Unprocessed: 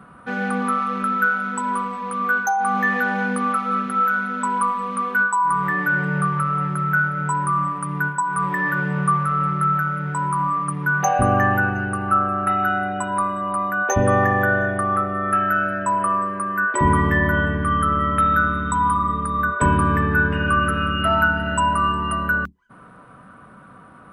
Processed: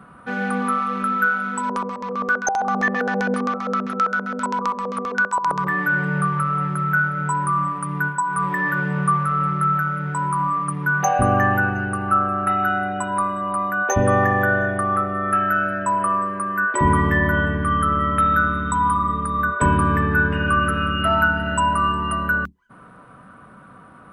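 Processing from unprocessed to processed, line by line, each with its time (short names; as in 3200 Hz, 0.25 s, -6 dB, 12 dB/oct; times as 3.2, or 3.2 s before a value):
1.63–5.67 LFO low-pass square 7.6 Hz 520–5900 Hz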